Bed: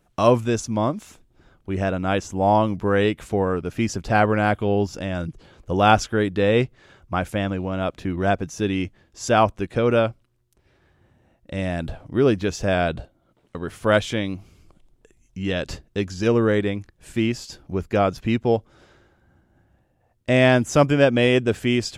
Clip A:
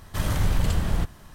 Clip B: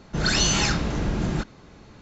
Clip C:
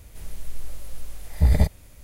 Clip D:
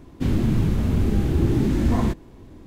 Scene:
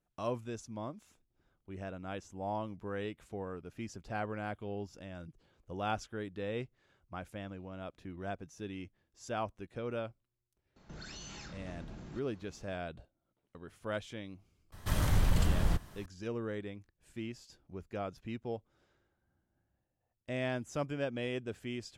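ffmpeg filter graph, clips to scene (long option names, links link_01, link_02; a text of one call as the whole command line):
ffmpeg -i bed.wav -i cue0.wav -i cue1.wav -filter_complex "[0:a]volume=-19.5dB[link_01];[2:a]acompressor=threshold=-31dB:ratio=6:attack=3.2:release=140:knee=1:detection=peak,atrim=end=2.01,asetpts=PTS-STARTPTS,volume=-13.5dB,afade=type=in:duration=0.004:curve=hsin,afade=type=out:start_time=2.006:duration=0.004:curve=hsin,adelay=10760[link_02];[1:a]atrim=end=1.34,asetpts=PTS-STARTPTS,volume=-5dB,afade=type=in:duration=0.004:curve=hsin,afade=type=out:start_time=1.336:duration=0.004:curve=hsin,adelay=14720[link_03];[link_01][link_02][link_03]amix=inputs=3:normalize=0" out.wav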